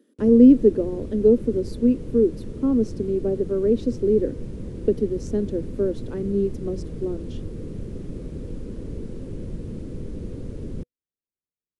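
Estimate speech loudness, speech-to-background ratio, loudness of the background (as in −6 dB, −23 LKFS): −21.5 LKFS, 14.0 dB, −35.5 LKFS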